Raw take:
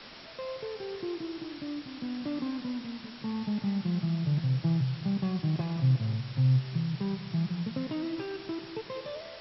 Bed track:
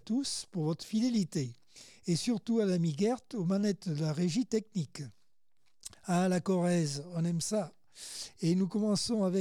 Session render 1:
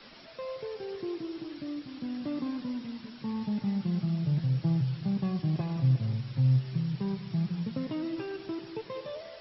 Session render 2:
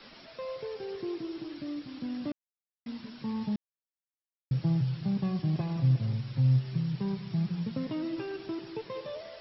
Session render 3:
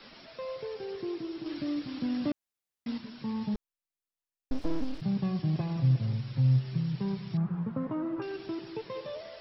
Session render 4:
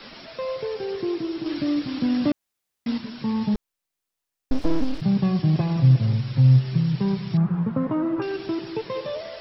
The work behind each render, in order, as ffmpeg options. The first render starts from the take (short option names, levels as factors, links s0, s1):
-af "afftdn=nr=7:nf=-47"
-filter_complex "[0:a]asplit=5[s0][s1][s2][s3][s4];[s0]atrim=end=2.32,asetpts=PTS-STARTPTS,afade=t=out:st=2.316:d=0.004:c=hsin[s5];[s1]atrim=start=2.32:end=2.86,asetpts=PTS-STARTPTS,volume=0[s6];[s2]atrim=start=2.86:end=3.56,asetpts=PTS-STARTPTS,afade=t=in:d=0.004:c=hsin,afade=t=out:st=0.696:d=0.004:c=hsin[s7];[s3]atrim=start=3.56:end=4.51,asetpts=PTS-STARTPTS,volume=0[s8];[s4]atrim=start=4.51,asetpts=PTS-STARTPTS,afade=t=in:d=0.004:c=hsin[s9];[s5][s6][s7][s8][s9]concat=n=5:v=0:a=1"
-filter_complex "[0:a]asplit=3[s0][s1][s2];[s0]afade=t=out:st=3.54:d=0.02[s3];[s1]aeval=exprs='abs(val(0))':c=same,afade=t=in:st=3.54:d=0.02,afade=t=out:st=5:d=0.02[s4];[s2]afade=t=in:st=5:d=0.02[s5];[s3][s4][s5]amix=inputs=3:normalize=0,asettb=1/sr,asplit=3[s6][s7][s8];[s6]atrim=end=7.374[s9];[s7]atrim=start=7.37:end=8.22,asetpts=PTS-STARTPTS,afade=t=in:d=0.004:c=qsin,afade=t=out:st=0.846:d=0.004:c=qsin,lowpass=f=1200:t=q:w=2.3[s10];[s8]atrim=start=8.216[s11];[s9][s10]acrossfade=d=0.004:c1=hsin:c2=qsin[s12];[s12][s11]acrossfade=d=0.004:c1=qsin:c2=hsin,asplit=3[s13][s14][s15];[s13]atrim=end=1.462[s16];[s14]atrim=start=1.458:end=2.982,asetpts=PTS-STARTPTS,volume=1.68[s17];[s15]atrim=start=2.978[s18];[s16][s17]acrossfade=d=0.004:c1=hsin:c2=hsin[s19];[s19][s18]acrossfade=d=0.004:c1=hsin:c2=hsin"
-af "volume=2.82"